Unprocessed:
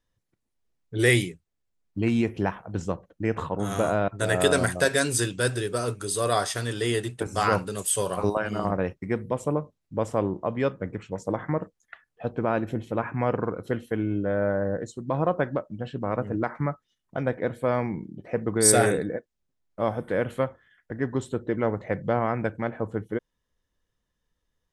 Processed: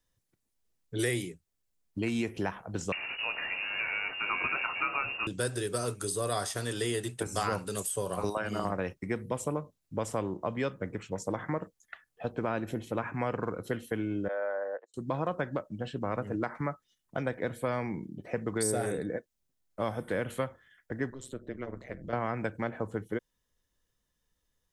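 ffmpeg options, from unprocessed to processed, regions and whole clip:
-filter_complex "[0:a]asettb=1/sr,asplit=3[a][b][c];[a]atrim=end=2.924[d];[b]atrim=start=2.92:end=5.27,asetpts=PTS-STARTPTS,afade=t=in:d=0.004:c=qsin,afade=t=out:st=2.346:d=0.004:c=qsin,aeval=exprs='val(0)+0.5*0.0447*sgn(val(0))':c=same,asplit=2[e][f];[f]adelay=22,volume=-11.5dB[g];[e][g]amix=inputs=2:normalize=0,atrim=end_sample=103635,lowpass=f=2.5k:t=q:w=0.5098,lowpass=f=2.5k:t=q:w=0.6013,lowpass=f=2.5k:t=q:w=0.9,lowpass=f=2.5k:t=q:w=2.563,afreqshift=-2900[h];[c]atrim=start=5.266[i];[d][h]acrossfade=d=0.004:c1=hsin:c2=qsin[j];[j][i]acrossfade=d=0.004:c1=qsin:c2=hsin,asettb=1/sr,asplit=3[k][l][m];[k]atrim=end=14.284[n];[l]atrim=start=14.28:end=14.94,asetpts=PTS-STARTPTS,afade=t=in:d=0.004:c=qsin,afade=t=out:st=0.656:d=0.004:c=qsin,agate=range=-30dB:threshold=-30dB:ratio=16:release=100:detection=peak,highpass=f=530:w=0.5412,highpass=f=530:w=1.3066,highshelf=f=2.4k:g=-10.5[o];[m]atrim=start=14.936[p];[n][o]acrossfade=d=0.004:c1=hsin:c2=qsin[q];[q][p]acrossfade=d=0.004:c1=qsin:c2=hsin,asettb=1/sr,asplit=3[r][s][t];[r]atrim=end=21.104[u];[s]atrim=start=21.1:end=22.13,asetpts=PTS-STARTPTS,afade=t=in:d=0.004:c=qsin,afade=t=out:st=1.026:d=0.004:c=qsin,equalizer=f=800:w=5.6:g=-15,acompressor=threshold=-35dB:ratio=2:attack=3.2:release=140:knee=1:detection=peak,tremolo=f=130:d=0.919[v];[t]atrim=start=22.126[w];[u][v]acrossfade=d=0.004:c1=hsin:c2=qsin[x];[x][w]acrossfade=d=0.004:c1=qsin:c2=hsin,highshelf=f=5k:g=9.5,acrossover=split=230|1200[y][z][aa];[y]acompressor=threshold=-36dB:ratio=4[ab];[z]acompressor=threshold=-29dB:ratio=4[ac];[aa]acompressor=threshold=-34dB:ratio=4[ad];[ab][ac][ad]amix=inputs=3:normalize=0,volume=-2dB"

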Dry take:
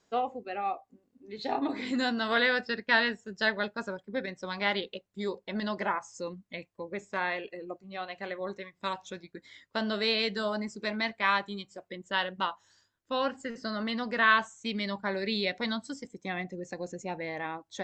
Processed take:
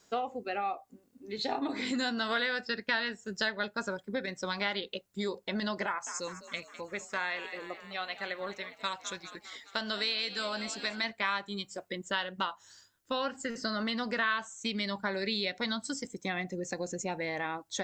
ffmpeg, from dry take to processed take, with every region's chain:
-filter_complex "[0:a]asettb=1/sr,asplit=3[a][b][c];[a]atrim=end=5.864[d];[b]atrim=start=5.86:end=11.04,asetpts=PTS-STARTPTS,afade=t=in:d=0.004:c=qsin,afade=t=out:st=5.176:d=0.004:c=qsin,equalizer=f=250:w=0.33:g=-8,asplit=7[e][f][g][h][i][j][k];[f]adelay=204,afreqshift=57,volume=-15.5dB[l];[g]adelay=408,afreqshift=114,volume=-19.8dB[m];[h]adelay=612,afreqshift=171,volume=-24.1dB[n];[i]adelay=816,afreqshift=228,volume=-28.4dB[o];[j]adelay=1020,afreqshift=285,volume=-32.7dB[p];[k]adelay=1224,afreqshift=342,volume=-37dB[q];[e][l][m][n][o][p][q]amix=inputs=7:normalize=0,atrim=end_sample=228438[r];[c]atrim=start=11.036[s];[d][r]acrossfade=d=0.004:c1=hsin:c2=qsin[t];[t][s]acrossfade=d=0.004:c1=qsin:c2=hsin,highshelf=f=5.1k:g=11.5,acompressor=threshold=-35dB:ratio=3,equalizer=f=1.4k:t=o:w=0.24:g=3.5,volume=3.5dB"

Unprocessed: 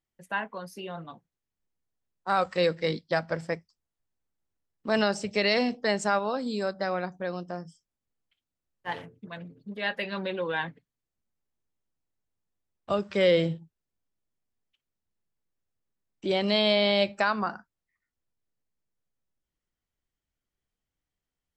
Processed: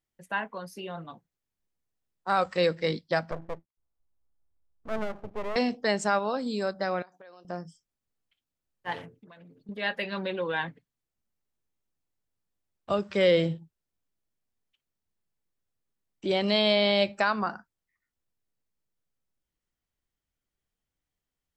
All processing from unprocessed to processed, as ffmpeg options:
-filter_complex "[0:a]asettb=1/sr,asplit=3[a][b][c];[a]atrim=end=3.314[d];[b]atrim=start=3.31:end=5.56,asetpts=PTS-STARTPTS,afade=t=in:d=0.004:c=qsin,afade=t=out:st=2.246:d=0.004:c=qsin,lowpass=f=1.3k:w=0.5412,lowpass=f=1.3k:w=1.3066,asubboost=boost=8.5:cutoff=84,aeval=exprs='max(val(0),0)':c=same[e];[c]atrim=start=5.556[f];[d][e]acrossfade=d=0.004:c1=hsin:c2=qsin[g];[g][f]acrossfade=d=0.004:c1=qsin:c2=hsin,asettb=1/sr,asplit=3[h][i][j];[h]atrim=end=7.024[k];[i]atrim=start=7.02:end=7.45,asetpts=PTS-STARTPTS,afade=t=in:d=0.004:c=qsin,afade=t=out:st=0.426:d=0.004:c=qsin,highpass=490,acompressor=threshold=-47dB:ratio=8:attack=3.2:release=140:knee=1:detection=peak[l];[j]atrim=start=7.446[m];[k][l]acrossfade=d=0.004:c1=hsin:c2=qsin[n];[n][m]acrossfade=d=0.004:c1=qsin:c2=hsin,asettb=1/sr,asplit=3[o][p][q];[o]atrim=end=9.154[r];[p]atrim=start=9.15:end=9.69,asetpts=PTS-STARTPTS,afade=t=in:d=0.004:c=qsin,afade=t=out:st=0.536:d=0.004:c=qsin,equalizer=f=71:w=0.61:g=-11.5,acompressor=threshold=-48dB:ratio=8:attack=3.2:release=140:knee=1:detection=peak[s];[q]atrim=start=9.686[t];[r][s]acrossfade=d=0.004:c1=hsin:c2=qsin[u];[u][t]acrossfade=d=0.004:c1=qsin:c2=hsin"

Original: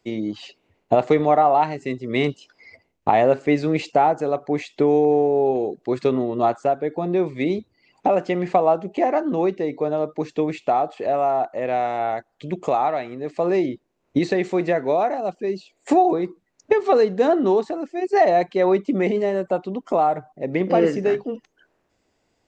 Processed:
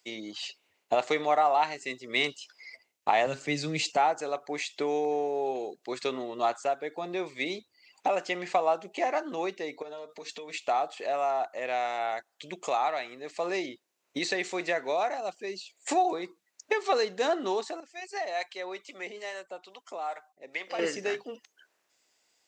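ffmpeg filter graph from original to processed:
-filter_complex "[0:a]asettb=1/sr,asplit=3[a][b][c];[a]atrim=end=3.264[d];[b]atrim=start=3.26:end=3.97,asetpts=PTS-STARTPTS,afade=t=in:d=0.004:c=qsin,afade=t=out:st=0.706:d=0.004:c=qsin,bass=f=250:g=13,treble=f=4k:g=2,acrossover=split=180|3000[e][f][g];[f]acompressor=threshold=-30dB:ratio=1.5:attack=3.2:release=140:knee=2.83:detection=peak[h];[e][h][g]amix=inputs=3:normalize=0,aecho=1:1:6.7:0.33,atrim=end_sample=31311[i];[c]atrim=start=3.966[j];[d][i]acrossfade=d=0.004:c1=hsin:c2=qsin[k];[k][j]acrossfade=d=0.004:c1=qsin:c2=hsin,asettb=1/sr,asplit=3[l][m][n];[l]atrim=end=9.824[o];[m]atrim=start=9.82:end=10.54,asetpts=PTS-STARTPTS,afade=t=in:d=0.004:c=qsin,afade=t=out:st=0.716:d=0.004:c=qsin,equalizer=f=3.8k:w=2.2:g=3.5,aecho=1:1:4.4:0.88,atrim=end_sample=31752,acompressor=threshold=-29dB:ratio=5:attack=3.2:release=140:knee=1:detection=peak[p];[n]atrim=start=10.536[q];[o][p]acrossfade=d=0.004:c1=hsin:c2=qsin[r];[r][q]acrossfade=d=0.004:c1=qsin:c2=hsin,asettb=1/sr,asplit=3[s][t][u];[s]atrim=end=17.804[v];[t]atrim=start=17.8:end=20.79,asetpts=PTS-STARTPTS,afade=t=in:d=0.004:c=qsin,afade=t=out:st=2.986:d=0.004:c=qsin,highpass=f=820:p=1,acrossover=split=500[w][x];[w]aeval=exprs='val(0)*(1-0.7/2+0.7/2*cos(2*PI*2.3*n/s))':c=same[y];[x]aeval=exprs='val(0)*(1-0.7/2-0.7/2*cos(2*PI*2.3*n/s))':c=same[z];[y][z]amix=inputs=2:normalize=0[aa];[u]atrim=start=20.786[ab];[v][aa]acrossfade=d=0.004:c1=hsin:c2=qsin[ac];[ac][ab]acrossfade=d=0.004:c1=qsin:c2=hsin,highpass=f=1.3k:p=1,highshelf=f=3.4k:g=10.5,volume=-2dB"

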